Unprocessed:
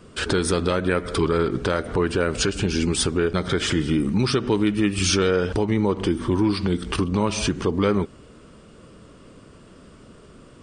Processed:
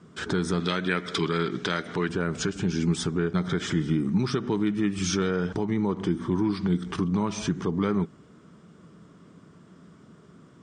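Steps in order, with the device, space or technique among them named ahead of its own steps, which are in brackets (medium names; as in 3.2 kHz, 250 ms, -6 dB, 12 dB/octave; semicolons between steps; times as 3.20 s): 0.60–2.09 s: frequency weighting D; car door speaker (cabinet simulation 110–7300 Hz, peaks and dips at 170 Hz +9 dB, 530 Hz -8 dB, 2.7 kHz -9 dB, 4.5 kHz -7 dB); trim -5 dB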